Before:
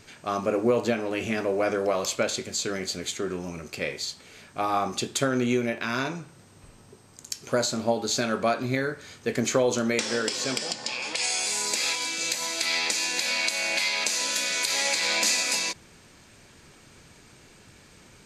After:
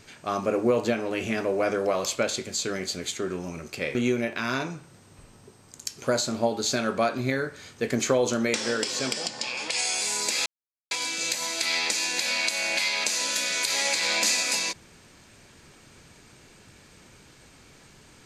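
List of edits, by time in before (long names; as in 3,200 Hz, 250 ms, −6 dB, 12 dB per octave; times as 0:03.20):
0:03.95–0:05.40: remove
0:11.91: splice in silence 0.45 s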